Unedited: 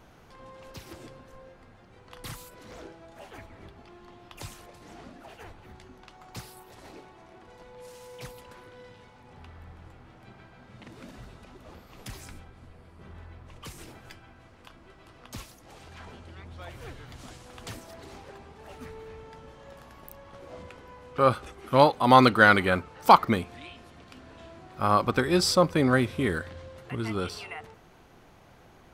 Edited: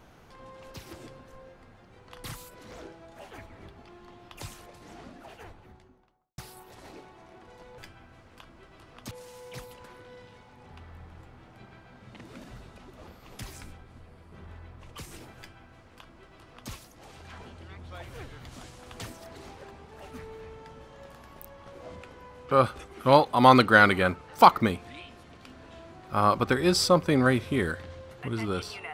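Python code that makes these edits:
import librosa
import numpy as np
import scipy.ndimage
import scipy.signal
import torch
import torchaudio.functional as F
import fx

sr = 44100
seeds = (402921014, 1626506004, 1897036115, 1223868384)

y = fx.studio_fade_out(x, sr, start_s=5.26, length_s=1.12)
y = fx.edit(y, sr, fx.duplicate(start_s=14.05, length_s=1.33, to_s=7.78), tone=tone)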